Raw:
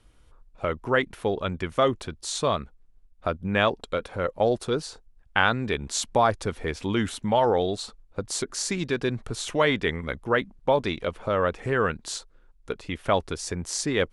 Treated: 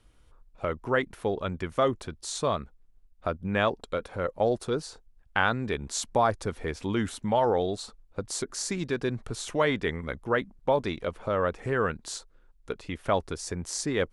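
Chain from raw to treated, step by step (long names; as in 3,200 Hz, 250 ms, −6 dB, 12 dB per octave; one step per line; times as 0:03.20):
dynamic equaliser 3,000 Hz, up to −4 dB, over −43 dBFS, Q 1.2
level −2.5 dB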